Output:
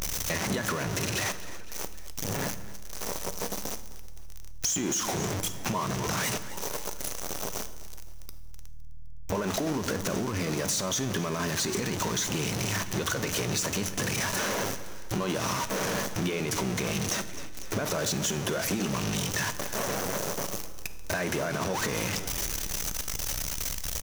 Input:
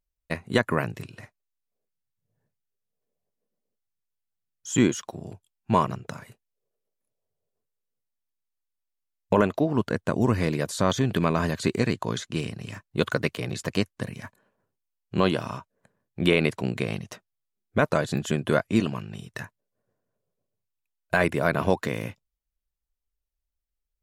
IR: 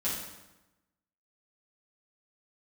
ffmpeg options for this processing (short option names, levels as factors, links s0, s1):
-filter_complex "[0:a]aeval=exprs='val(0)+0.5*0.075*sgn(val(0))':c=same,equalizer=f=6000:w=4.4:g=10.5,asplit=5[s0][s1][s2][s3][s4];[s1]adelay=256,afreqshift=-39,volume=0.106[s5];[s2]adelay=512,afreqshift=-78,volume=0.055[s6];[s3]adelay=768,afreqshift=-117,volume=0.0285[s7];[s4]adelay=1024,afreqshift=-156,volume=0.015[s8];[s0][s5][s6][s7][s8]amix=inputs=5:normalize=0,alimiter=limit=0.168:level=0:latency=1:release=24,acontrast=83,lowshelf=f=120:g=-9,acompressor=threshold=0.0708:ratio=6,asplit=2[s9][s10];[1:a]atrim=start_sample=2205[s11];[s10][s11]afir=irnorm=-1:irlink=0,volume=0.168[s12];[s9][s12]amix=inputs=2:normalize=0,volume=0.562"